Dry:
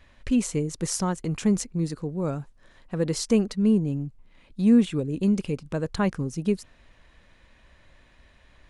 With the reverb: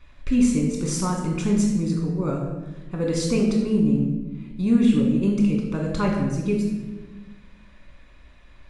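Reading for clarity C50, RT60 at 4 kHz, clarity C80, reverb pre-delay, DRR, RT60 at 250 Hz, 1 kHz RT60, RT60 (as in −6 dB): 3.5 dB, 0.80 s, 5.5 dB, 3 ms, −1.0 dB, 1.8 s, 1.0 s, 1.2 s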